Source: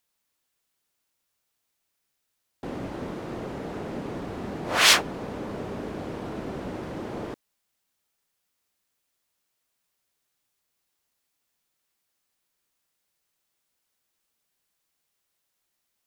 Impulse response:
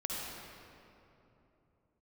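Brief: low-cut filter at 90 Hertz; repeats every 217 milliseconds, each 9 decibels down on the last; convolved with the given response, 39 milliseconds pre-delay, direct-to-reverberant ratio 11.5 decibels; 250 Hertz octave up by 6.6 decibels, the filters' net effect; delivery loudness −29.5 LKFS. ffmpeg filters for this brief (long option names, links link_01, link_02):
-filter_complex "[0:a]highpass=90,equalizer=frequency=250:width_type=o:gain=8.5,aecho=1:1:217|434|651|868:0.355|0.124|0.0435|0.0152,asplit=2[link_01][link_02];[1:a]atrim=start_sample=2205,adelay=39[link_03];[link_02][link_03]afir=irnorm=-1:irlink=0,volume=-15dB[link_04];[link_01][link_04]amix=inputs=2:normalize=0,volume=-4dB"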